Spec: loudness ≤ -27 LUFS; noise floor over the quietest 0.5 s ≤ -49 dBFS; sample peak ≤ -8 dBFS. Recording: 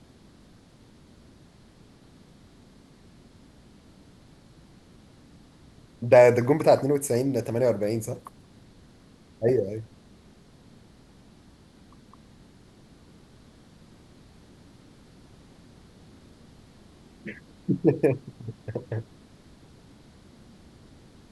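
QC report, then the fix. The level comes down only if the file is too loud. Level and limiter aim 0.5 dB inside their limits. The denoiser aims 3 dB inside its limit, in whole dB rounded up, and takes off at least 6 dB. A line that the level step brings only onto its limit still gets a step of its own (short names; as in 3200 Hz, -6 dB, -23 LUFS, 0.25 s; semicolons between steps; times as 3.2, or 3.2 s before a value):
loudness -24.0 LUFS: fail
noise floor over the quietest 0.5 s -54 dBFS: OK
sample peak -5.5 dBFS: fail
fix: gain -3.5 dB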